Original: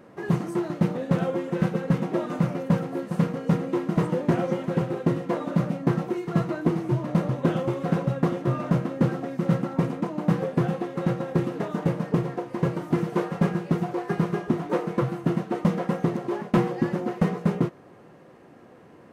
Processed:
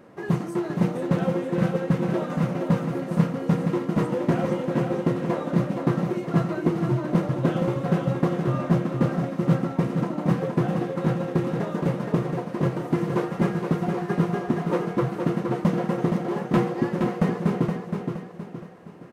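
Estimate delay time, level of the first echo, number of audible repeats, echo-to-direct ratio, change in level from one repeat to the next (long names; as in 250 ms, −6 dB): 469 ms, −5.5 dB, 3, −4.5 dB, −7.5 dB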